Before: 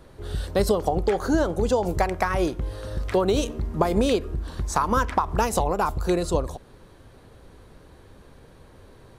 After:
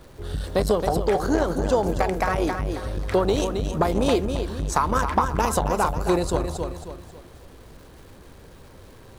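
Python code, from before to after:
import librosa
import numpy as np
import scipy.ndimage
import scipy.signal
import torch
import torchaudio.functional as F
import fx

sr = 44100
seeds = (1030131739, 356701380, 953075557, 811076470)

y = fx.dmg_crackle(x, sr, seeds[0], per_s=580.0, level_db=-47.0)
y = fx.echo_feedback(y, sr, ms=270, feedback_pct=35, wet_db=-7.0)
y = fx.transformer_sat(y, sr, knee_hz=380.0)
y = y * librosa.db_to_amplitude(2.0)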